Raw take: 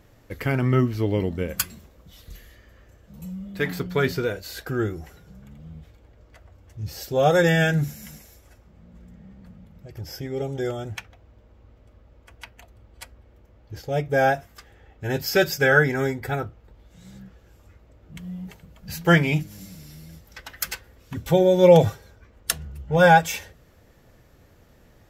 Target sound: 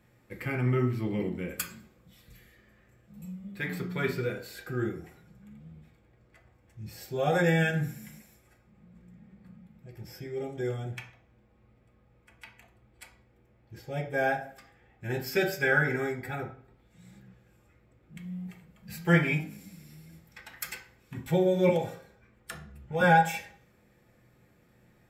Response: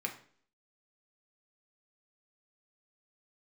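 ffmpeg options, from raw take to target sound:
-filter_complex "[0:a]asettb=1/sr,asplit=3[link_01][link_02][link_03];[link_01]atrim=end=21.694[link_04];[link_02]atrim=start=21.69:end=23.01,asetpts=PTS-STARTPTS,afade=type=in:duration=0.004:curve=qsin,afade=type=out:start_time=1.316:duration=0.004:curve=qsin,acrossover=split=230|2100[link_05][link_06][link_07];[link_05]acompressor=threshold=-34dB:ratio=4[link_08];[link_06]acompressor=threshold=-19dB:ratio=4[link_09];[link_07]acompressor=threshold=-37dB:ratio=4[link_10];[link_08][link_09][link_10]amix=inputs=3:normalize=0[link_11];[link_03]atrim=start=23.006[link_12];[link_04][link_11]acrossfade=duration=0.004:curve1=hsin:curve2=qsin[link_13];[link_13][link_12]acrossfade=duration=0.004:curve1=qsin:curve2=hsin[link_14];[1:a]atrim=start_sample=2205[link_15];[link_14][link_15]afir=irnorm=-1:irlink=0,volume=-8dB"

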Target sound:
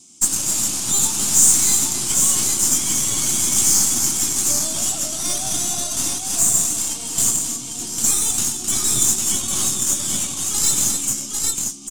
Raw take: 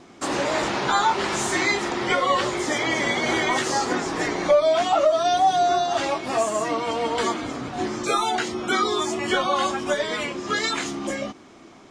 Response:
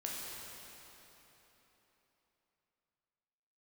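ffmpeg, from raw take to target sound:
-filter_complex "[0:a]asplit=2[link_01][link_02];[link_02]aecho=0:1:101|261|801:0.282|0.398|0.631[link_03];[link_01][link_03]amix=inputs=2:normalize=0,aexciter=amount=14:drive=7.2:freq=2700,aeval=exprs='3.16*(cos(1*acos(clip(val(0)/3.16,-1,1)))-cos(1*PI/2))+0.447*(cos(8*acos(clip(val(0)/3.16,-1,1)))-cos(8*PI/2))':channel_layout=same,equalizer=frequency=125:width_type=o:width=1:gain=7,equalizer=frequency=250:width_type=o:width=1:gain=9,equalizer=frequency=500:width_type=o:width=1:gain=-9,equalizer=frequency=2000:width_type=o:width=1:gain=-6,equalizer=frequency=4000:width_type=o:width=1:gain=-11,equalizer=frequency=8000:width_type=o:width=1:gain=11,volume=-16dB"

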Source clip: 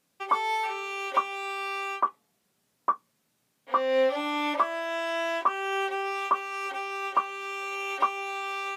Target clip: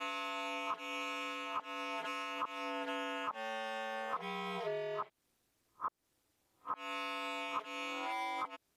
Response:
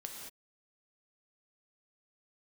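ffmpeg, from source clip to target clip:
-af "areverse,acompressor=threshold=-31dB:ratio=12,aeval=exprs='val(0)*sin(2*PI*110*n/s)':channel_layout=same,volume=-2dB"

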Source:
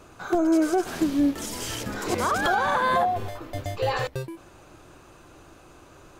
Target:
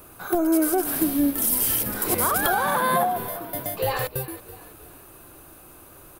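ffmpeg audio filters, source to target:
ffmpeg -i in.wav -filter_complex "[0:a]asettb=1/sr,asplit=3[link_01][link_02][link_03];[link_01]atrim=end=2.634[link_04];[link_02]atrim=start=2.63:end=3.84,asetpts=PTS-STARTPTS,afade=type=in:duration=0.004:curve=qsin,afade=type=out:start_time=1.206:duration=0.004:curve=qsin,lowshelf=frequency=110:width_type=q:width=3:gain=-12[link_05];[link_03]atrim=start=3.836[link_06];[link_04][link_05]acrossfade=duration=0.004:curve1=hsin:curve2=qsin[link_07];[link_07][link_06]acrossfade=duration=0.004:curve1=qsin:curve2=hsin,asplit=5[link_08][link_09][link_10][link_11][link_12];[link_09]adelay=328,afreqshift=-33,volume=-16.5dB[link_13];[link_10]adelay=656,afreqshift=-66,volume=-23.1dB[link_14];[link_11]adelay=984,afreqshift=-99,volume=-29.6dB[link_15];[link_12]adelay=1312,afreqshift=-132,volume=-36.2dB[link_16];[link_08][link_13][link_14][link_15][link_16]amix=inputs=5:normalize=0,aexciter=amount=12.3:drive=6.6:freq=9700" out.wav

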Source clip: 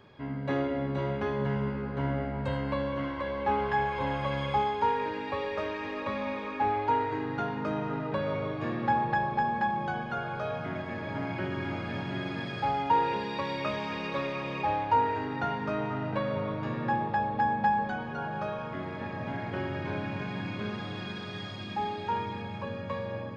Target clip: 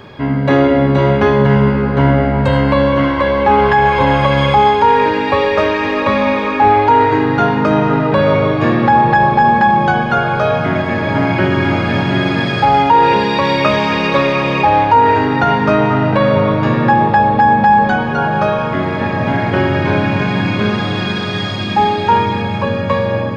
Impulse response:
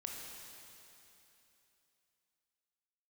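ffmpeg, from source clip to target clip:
-af "alimiter=level_in=20.5dB:limit=-1dB:release=50:level=0:latency=1,volume=-1dB"

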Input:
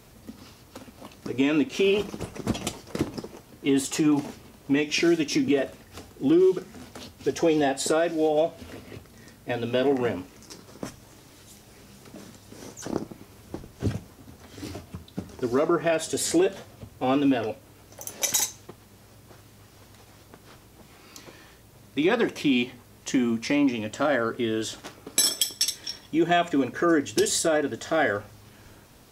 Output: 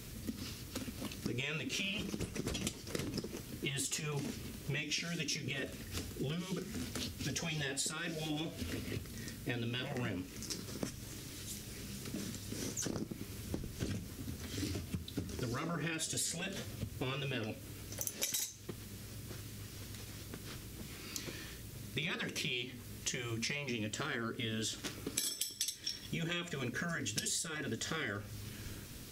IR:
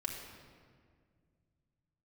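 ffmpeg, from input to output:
-af "afftfilt=real='re*lt(hypot(re,im),0.282)':imag='im*lt(hypot(re,im),0.282)':win_size=1024:overlap=0.75,equalizer=frequency=800:width=0.95:gain=-14,acompressor=threshold=-41dB:ratio=6,volume=5.5dB"

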